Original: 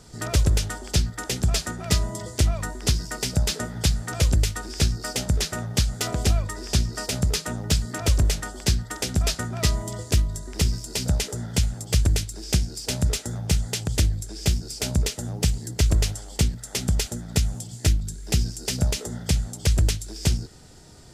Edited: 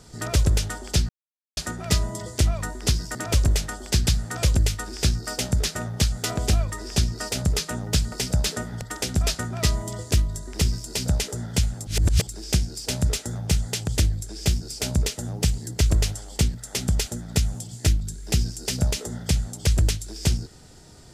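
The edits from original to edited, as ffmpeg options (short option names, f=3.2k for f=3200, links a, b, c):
-filter_complex "[0:a]asplit=9[a][b][c][d][e][f][g][h][i];[a]atrim=end=1.09,asetpts=PTS-STARTPTS,afade=t=out:st=1.086:d=0.004:c=hsin[j];[b]atrim=start=1.09:end=1.57,asetpts=PTS-STARTPTS,volume=0[k];[c]atrim=start=1.57:end=3.152,asetpts=PTS-STARTPTS,afade=t=in:d=0.004:c=hsin[l];[d]atrim=start=7.888:end=8.812[m];[e]atrim=start=3.838:end=7.892[n];[f]atrim=start=3.148:end=3.842[o];[g]atrim=start=8.808:end=11.872[p];[h]atrim=start=11.868:end=12.272,asetpts=PTS-STARTPTS,areverse[q];[i]atrim=start=12.268[r];[j][k][l]concat=n=3:v=0:a=1[s];[s][m]acrossfade=d=0.004:c1=hsin:c2=hsin[t];[t][n]acrossfade=d=0.004:c1=hsin:c2=hsin[u];[u][o]acrossfade=d=0.004:c1=hsin:c2=hsin[v];[v][p]acrossfade=d=0.004:c1=hsin:c2=hsin[w];[w][q]acrossfade=d=0.004:c1=hsin:c2=hsin[x];[x][r]acrossfade=d=0.004:c1=hsin:c2=hsin"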